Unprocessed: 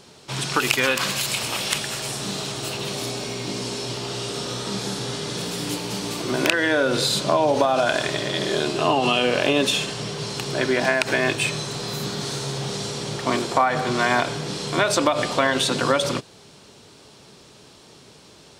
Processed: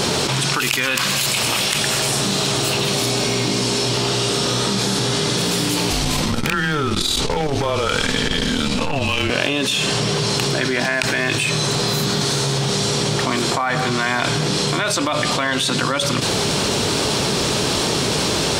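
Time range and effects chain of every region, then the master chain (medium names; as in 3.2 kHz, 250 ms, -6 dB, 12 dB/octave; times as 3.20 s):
5.90–9.30 s: hard clipper -13 dBFS + frequency shift -150 Hz + transformer saturation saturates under 270 Hz
whole clip: dynamic bell 540 Hz, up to -7 dB, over -32 dBFS, Q 0.76; level flattener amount 100%; trim -1 dB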